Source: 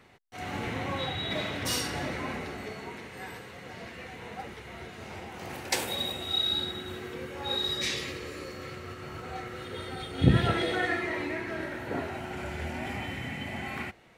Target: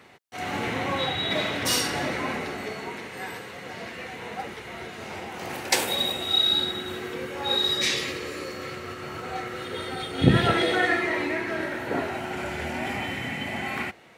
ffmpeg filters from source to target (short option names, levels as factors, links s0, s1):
-af "highpass=f=190:p=1,volume=2.11"